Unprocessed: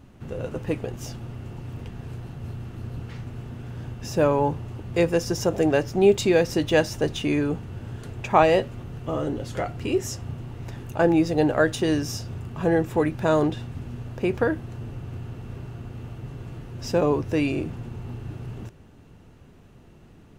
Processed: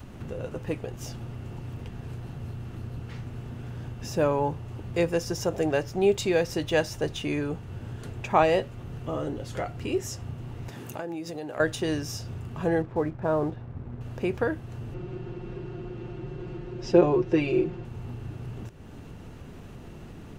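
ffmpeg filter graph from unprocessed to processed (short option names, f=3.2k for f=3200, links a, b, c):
-filter_complex "[0:a]asettb=1/sr,asplit=3[a][b][c];[a]atrim=end=10.694[d];[b]atrim=start=10.69:end=11.6,asetpts=PTS-STARTPTS,afade=t=in:d=0.004:c=qsin,afade=t=out:st=0.906:d=0.004:c=qsin,highpass=160,acompressor=threshold=-29dB:ratio=4:attack=3.2:release=140:knee=1:detection=peak,highshelf=f=6.5k:g=6.5[e];[c]atrim=start=11.596[f];[d][e]acrossfade=d=0.004:c1=hsin:c2=qsin[g];[g][f]acrossfade=d=0.004:c1=qsin:c2=hsin,asettb=1/sr,asplit=3[h][i][j];[h]atrim=end=12.824[k];[i]atrim=start=12.82:end=14.01,asetpts=PTS-STARTPTS,afade=t=in:d=0.004:c=qsin,afade=t=out:st=1.186:d=0.004:c=qsin,lowpass=1.3k,aeval=exprs='sgn(val(0))*max(abs(val(0))-0.00398,0)':c=same[l];[j]atrim=start=14.006[m];[k][l]acrossfade=d=0.004:c1=hsin:c2=qsin[n];[n][m]acrossfade=d=0.004:c1=qsin:c2=hsin,asettb=1/sr,asplit=3[o][p][q];[o]atrim=end=14.944[r];[p]atrim=start=14.94:end=17.85,asetpts=PTS-STARTPTS,afade=t=in:d=0.004:c=qsin,afade=t=out:st=2.906:d=0.004:c=qsin,lowpass=4.6k,equalizer=f=360:w=3.1:g=11,aecho=1:1:5.6:0.71,atrim=end_sample=128331[s];[q]atrim=start=17.846[t];[r][s]acrossfade=d=0.004:c1=hsin:c2=qsin[u];[u][t]acrossfade=d=0.004:c1=qsin:c2=hsin,acompressor=mode=upward:threshold=-28dB:ratio=2.5,adynamicequalizer=threshold=0.0126:dfrequency=250:dqfactor=1.6:tfrequency=250:tqfactor=1.6:attack=5:release=100:ratio=0.375:range=2.5:mode=cutabove:tftype=bell,volume=-3.5dB"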